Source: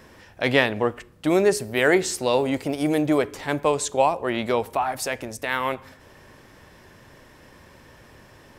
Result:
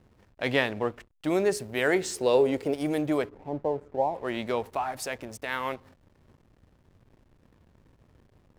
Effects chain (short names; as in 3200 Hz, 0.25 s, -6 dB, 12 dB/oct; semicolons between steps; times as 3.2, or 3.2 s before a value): 2.15–2.74 bell 430 Hz +10.5 dB 0.55 oct; 3.29–4.15 elliptic low-pass 890 Hz, stop band 40 dB; backlash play -39 dBFS; gain -6 dB